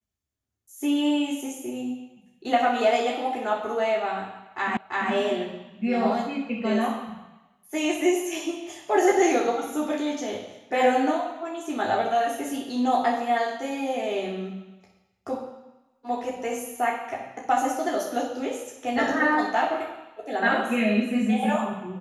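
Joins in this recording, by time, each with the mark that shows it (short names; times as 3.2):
4.77 repeat of the last 0.34 s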